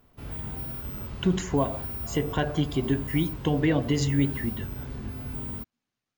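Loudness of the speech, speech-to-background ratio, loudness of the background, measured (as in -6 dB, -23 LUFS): -27.5 LUFS, 8.0 dB, -35.5 LUFS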